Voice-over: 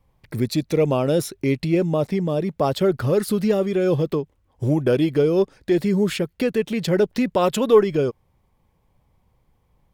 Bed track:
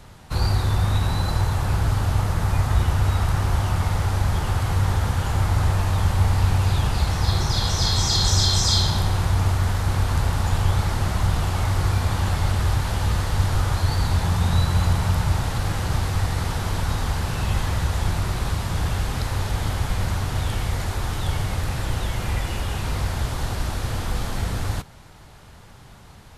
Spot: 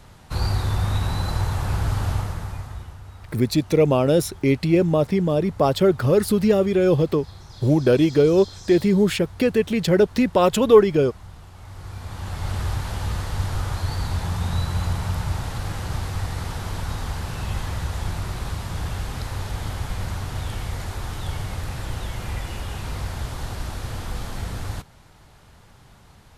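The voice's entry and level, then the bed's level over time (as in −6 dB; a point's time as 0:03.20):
3.00 s, +2.0 dB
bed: 0:02.11 −2 dB
0:03.02 −21 dB
0:11.54 −21 dB
0:12.55 −4.5 dB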